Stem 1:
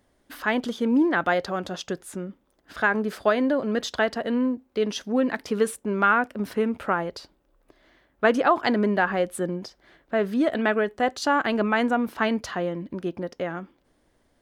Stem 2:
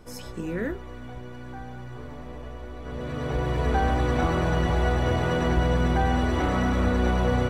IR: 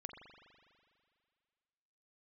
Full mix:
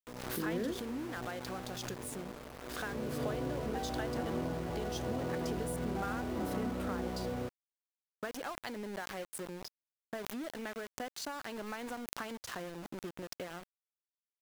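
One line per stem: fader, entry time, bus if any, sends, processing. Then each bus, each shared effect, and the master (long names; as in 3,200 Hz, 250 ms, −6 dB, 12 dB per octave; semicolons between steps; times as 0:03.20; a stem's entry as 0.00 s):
−8.5 dB, 0.00 s, send −18 dB, high-shelf EQ 5,600 Hz +11 dB; downward compressor 5 to 1, threshold −32 dBFS, peak gain reduction 16 dB
−3.5 dB, 0.00 s, no send, downward compressor, threshold −27 dBFS, peak gain reduction 9.5 dB; resonant band-pass 350 Hz, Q 0.61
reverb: on, RT60 2.2 s, pre-delay 41 ms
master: centre clipping without the shift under −43.5 dBFS; background raised ahead of every attack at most 46 dB per second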